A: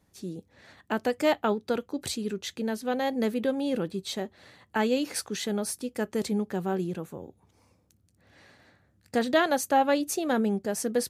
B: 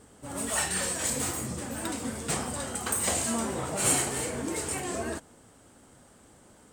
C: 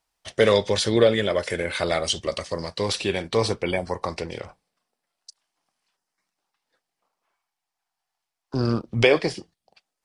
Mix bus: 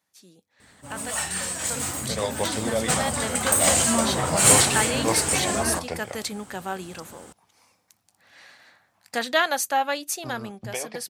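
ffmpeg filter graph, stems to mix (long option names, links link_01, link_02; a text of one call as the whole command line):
ffmpeg -i stem1.wav -i stem2.wav -i stem3.wav -filter_complex "[0:a]highpass=frequency=980:poles=1,volume=-2dB,asplit=3[link_01][link_02][link_03];[link_01]atrim=end=1.18,asetpts=PTS-STARTPTS,afade=type=out:start_time=1.176:duration=0.004:curve=hsin[link_04];[link_02]atrim=start=1.18:end=1.7,asetpts=PTS-STARTPTS,volume=0[link_05];[link_03]atrim=start=1.7,asetpts=PTS-STARTPTS,afade=type=in:duration=0.004:curve=hsin[link_06];[link_04][link_05][link_06]concat=n=3:v=0:a=1,asplit=2[link_07][link_08];[1:a]adelay=600,volume=0dB[link_09];[2:a]equalizer=frequency=740:width=1.5:gain=9.5,adelay=1700,volume=-7.5dB[link_10];[link_08]apad=whole_len=517982[link_11];[link_10][link_11]sidechaincompress=threshold=-48dB:ratio=10:attack=38:release=125[link_12];[link_07][link_09][link_12]amix=inputs=3:normalize=0,highpass=63,equalizer=frequency=390:width_type=o:width=1.1:gain=-6.5,dynaudnorm=framelen=590:gausssize=9:maxgain=13dB" out.wav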